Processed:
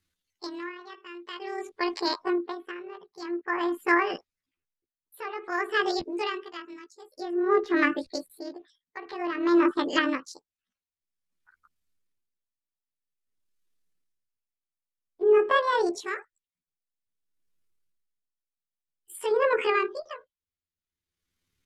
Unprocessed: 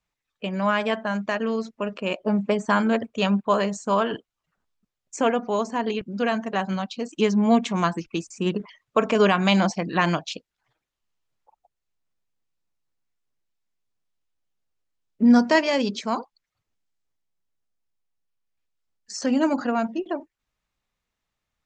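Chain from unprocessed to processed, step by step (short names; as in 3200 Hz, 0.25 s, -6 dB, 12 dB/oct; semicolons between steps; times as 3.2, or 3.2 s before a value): delay-line pitch shifter +9.5 st; bell 770 Hz -8.5 dB 0.94 oct; treble ducked by the level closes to 1400 Hz, closed at -20 dBFS; dB-linear tremolo 0.51 Hz, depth 20 dB; gain +4.5 dB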